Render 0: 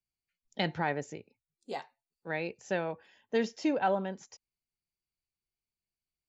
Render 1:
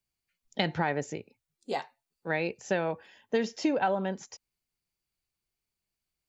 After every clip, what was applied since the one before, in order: compressor, threshold -29 dBFS, peak gain reduction 6.5 dB; gain +6 dB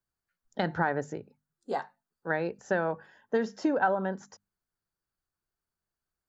resonant high shelf 1900 Hz -6.5 dB, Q 3; notches 50/100/150/200/250 Hz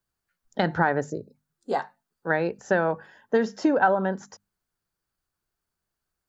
spectral gain 1.1–1.35, 680–3700 Hz -20 dB; gain +5.5 dB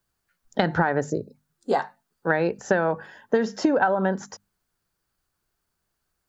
compressor 6:1, threshold -23 dBFS, peak gain reduction 8.5 dB; gain +6 dB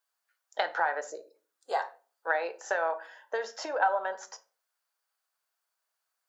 HPF 590 Hz 24 dB/oct; reverb RT60 0.40 s, pre-delay 6 ms, DRR 8.5 dB; gain -4.5 dB

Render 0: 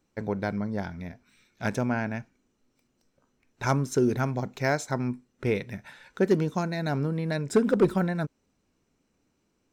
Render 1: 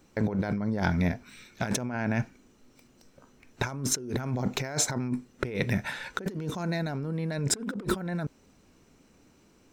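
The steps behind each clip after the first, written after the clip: negative-ratio compressor -36 dBFS, ratio -1; gain +5 dB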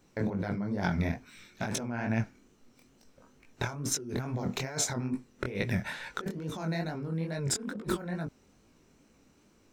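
chorus 2.3 Hz, delay 17.5 ms, depth 7.9 ms

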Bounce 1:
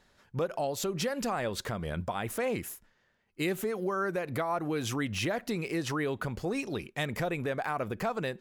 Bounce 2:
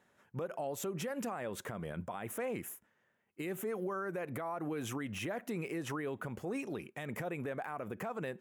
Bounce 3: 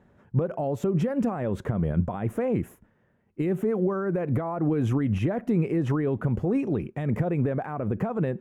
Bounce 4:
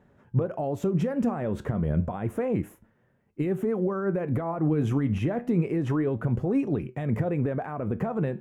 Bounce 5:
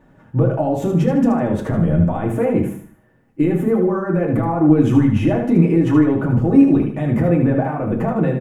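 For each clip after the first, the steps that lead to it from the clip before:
HPF 130 Hz 12 dB/oct; bell 4500 Hz -13.5 dB 0.74 oct; limiter -27 dBFS, peak gain reduction 8 dB; gain -3 dB
tilt -4.5 dB/oct; gain +6 dB
flange 0.3 Hz, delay 6.7 ms, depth 7.7 ms, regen +77%; gain +3.5 dB
feedback echo 76 ms, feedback 36%, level -6.5 dB; reverb, pre-delay 3 ms, DRR -0.5 dB; gain +5.5 dB

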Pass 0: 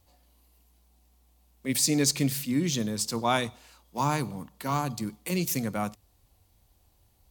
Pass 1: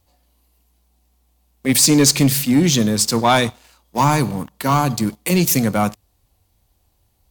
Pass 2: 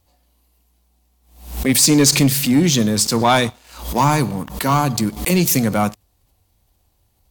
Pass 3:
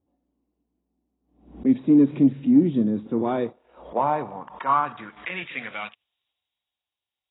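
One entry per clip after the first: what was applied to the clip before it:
sample leveller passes 2; gain +5.5 dB
backwards sustainer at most 100 dB/s
band-pass sweep 280 Hz -> 6000 Hz, 3.03–6.85; AAC 16 kbps 16000 Hz

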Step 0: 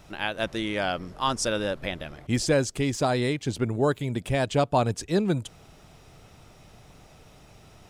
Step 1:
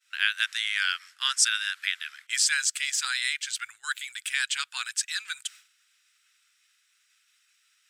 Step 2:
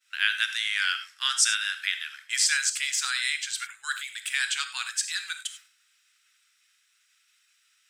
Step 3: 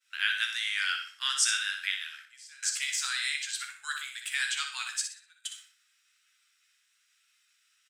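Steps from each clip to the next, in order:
elliptic high-pass 1500 Hz, stop band 60 dB; expander -50 dBFS; bell 8000 Hz +6 dB 0.27 oct; gain +7 dB
non-linear reverb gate 0.12 s flat, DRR 8 dB
step gate "xxxxxxxxxxxx..x" 80 bpm -24 dB; flange 1.1 Hz, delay 9.4 ms, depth 5.5 ms, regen +45%; feedback echo 61 ms, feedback 31%, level -8 dB

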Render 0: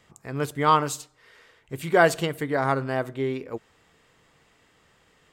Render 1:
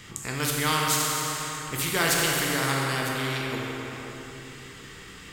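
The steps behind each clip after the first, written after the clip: bell 640 Hz -15 dB 1.3 oct; plate-style reverb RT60 2.4 s, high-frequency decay 0.7×, DRR -1 dB; spectral compressor 2:1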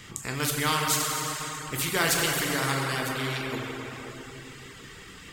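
reverb removal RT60 0.52 s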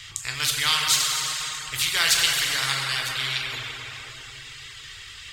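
EQ curve 110 Hz 0 dB, 200 Hz -21 dB, 3800 Hz +10 dB, 15000 Hz -3 dB; gain +1 dB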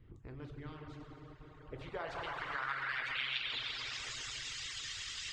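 low-pass sweep 330 Hz -> 6400 Hz, 1.41–4.05; harmonic-percussive split harmonic -12 dB; compressor 2.5:1, threshold -42 dBFS, peak gain reduction 13.5 dB; gain +1.5 dB

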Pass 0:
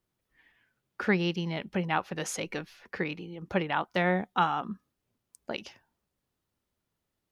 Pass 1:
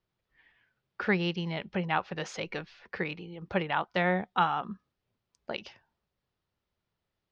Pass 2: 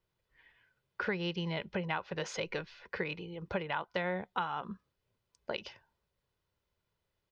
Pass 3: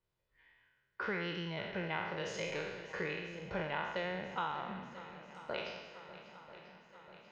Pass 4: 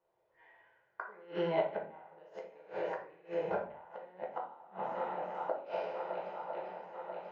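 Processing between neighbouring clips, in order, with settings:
LPF 5100 Hz 24 dB/oct; bell 270 Hz -6 dB 0.61 oct
comb 2 ms, depth 35%; compressor 6:1, threshold -31 dBFS, peak gain reduction 10.5 dB
spectral trails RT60 1.17 s; high shelf 7500 Hz -7.5 dB; swung echo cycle 0.989 s, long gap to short 1.5:1, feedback 63%, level -15.5 dB; gain -6 dB
flipped gate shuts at -30 dBFS, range -29 dB; band-pass 710 Hz, Q 2.2; shoebox room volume 37 m³, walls mixed, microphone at 0.67 m; gain +13.5 dB

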